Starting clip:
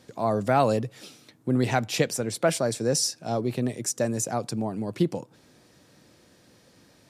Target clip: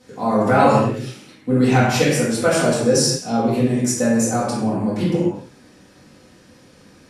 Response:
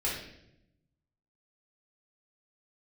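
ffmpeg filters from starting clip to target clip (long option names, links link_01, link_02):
-filter_complex "[1:a]atrim=start_sample=2205,afade=type=out:start_time=0.2:duration=0.01,atrim=end_sample=9261,asetrate=25137,aresample=44100[link_01];[0:a][link_01]afir=irnorm=-1:irlink=0,volume=-2dB"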